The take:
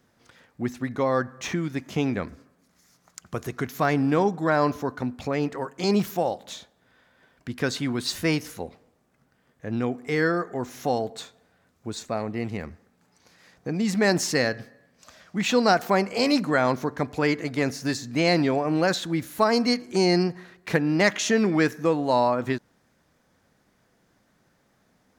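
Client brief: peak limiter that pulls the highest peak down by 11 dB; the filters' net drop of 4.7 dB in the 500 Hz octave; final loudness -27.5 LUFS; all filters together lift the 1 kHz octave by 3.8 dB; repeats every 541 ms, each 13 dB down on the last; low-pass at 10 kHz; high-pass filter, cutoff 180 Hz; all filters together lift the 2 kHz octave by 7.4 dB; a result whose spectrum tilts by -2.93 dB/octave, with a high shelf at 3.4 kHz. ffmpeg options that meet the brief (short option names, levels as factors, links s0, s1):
-af "highpass=180,lowpass=10000,equalizer=f=500:t=o:g=-8,equalizer=f=1000:t=o:g=5.5,equalizer=f=2000:t=o:g=5.5,highshelf=f=3400:g=8,alimiter=limit=0.237:level=0:latency=1,aecho=1:1:541|1082|1623:0.224|0.0493|0.0108,volume=0.841"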